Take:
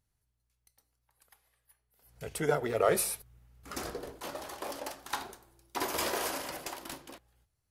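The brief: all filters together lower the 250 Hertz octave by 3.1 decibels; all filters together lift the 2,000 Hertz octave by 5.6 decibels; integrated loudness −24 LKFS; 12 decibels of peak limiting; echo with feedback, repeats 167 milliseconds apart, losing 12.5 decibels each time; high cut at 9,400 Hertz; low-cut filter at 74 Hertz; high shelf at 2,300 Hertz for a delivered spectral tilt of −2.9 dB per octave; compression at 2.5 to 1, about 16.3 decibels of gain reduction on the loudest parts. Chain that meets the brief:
high-pass filter 74 Hz
low-pass filter 9,400 Hz
parametric band 250 Hz −5 dB
parametric band 2,000 Hz +4.5 dB
high-shelf EQ 2,300 Hz +5.5 dB
downward compressor 2.5 to 1, threshold −47 dBFS
brickwall limiter −39 dBFS
repeating echo 167 ms, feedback 24%, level −12.5 dB
level +25.5 dB

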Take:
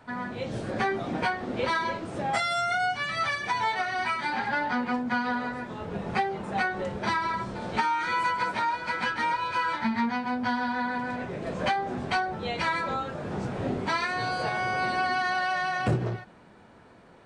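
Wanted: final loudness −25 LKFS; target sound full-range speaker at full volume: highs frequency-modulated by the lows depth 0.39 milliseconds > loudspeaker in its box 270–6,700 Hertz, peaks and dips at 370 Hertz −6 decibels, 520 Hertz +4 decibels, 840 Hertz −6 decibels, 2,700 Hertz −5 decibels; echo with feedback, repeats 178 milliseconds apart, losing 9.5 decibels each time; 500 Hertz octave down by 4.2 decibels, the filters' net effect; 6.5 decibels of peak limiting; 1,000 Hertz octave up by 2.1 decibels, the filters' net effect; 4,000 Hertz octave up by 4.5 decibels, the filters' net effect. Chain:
parametric band 500 Hz −7.5 dB
parametric band 1,000 Hz +7.5 dB
parametric band 4,000 Hz +6.5 dB
brickwall limiter −16 dBFS
repeating echo 178 ms, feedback 33%, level −9.5 dB
highs frequency-modulated by the lows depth 0.39 ms
loudspeaker in its box 270–6,700 Hz, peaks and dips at 370 Hz −6 dB, 520 Hz +4 dB, 840 Hz −6 dB, 2,700 Hz −5 dB
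level +2.5 dB

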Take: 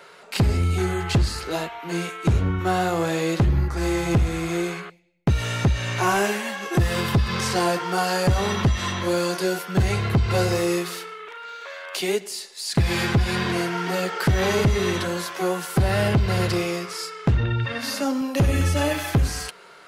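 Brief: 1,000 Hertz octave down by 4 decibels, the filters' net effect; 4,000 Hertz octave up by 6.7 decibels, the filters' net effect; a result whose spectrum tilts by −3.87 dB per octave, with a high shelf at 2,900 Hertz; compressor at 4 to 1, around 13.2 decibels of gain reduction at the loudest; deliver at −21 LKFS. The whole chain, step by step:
parametric band 1,000 Hz −6.5 dB
high-shelf EQ 2,900 Hz +4 dB
parametric band 4,000 Hz +5.5 dB
downward compressor 4 to 1, threshold −32 dBFS
level +12 dB

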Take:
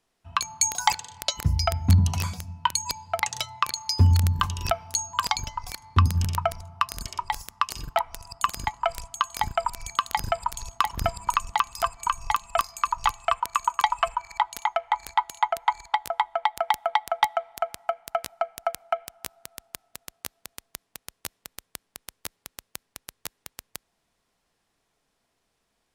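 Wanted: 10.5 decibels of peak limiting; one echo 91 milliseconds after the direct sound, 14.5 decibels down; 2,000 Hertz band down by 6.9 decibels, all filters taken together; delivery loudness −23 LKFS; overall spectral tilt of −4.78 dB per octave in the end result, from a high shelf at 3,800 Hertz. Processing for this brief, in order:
parametric band 2,000 Hz −6.5 dB
high-shelf EQ 3,800 Hz −8.5 dB
brickwall limiter −15.5 dBFS
single-tap delay 91 ms −14.5 dB
level +8 dB

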